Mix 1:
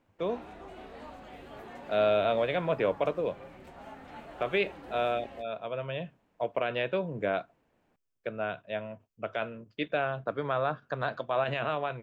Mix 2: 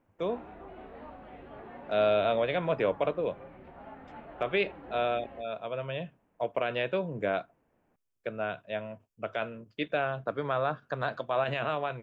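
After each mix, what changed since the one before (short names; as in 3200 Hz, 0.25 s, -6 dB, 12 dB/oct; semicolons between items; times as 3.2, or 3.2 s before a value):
background: add Gaussian blur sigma 3.1 samples; master: add bell 11000 Hz +9 dB 0.47 oct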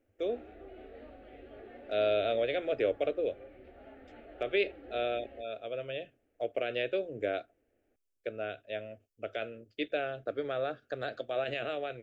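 master: add fixed phaser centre 410 Hz, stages 4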